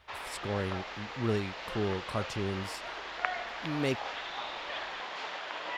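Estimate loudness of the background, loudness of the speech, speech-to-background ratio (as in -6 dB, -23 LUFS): -38.5 LUFS, -36.0 LUFS, 2.5 dB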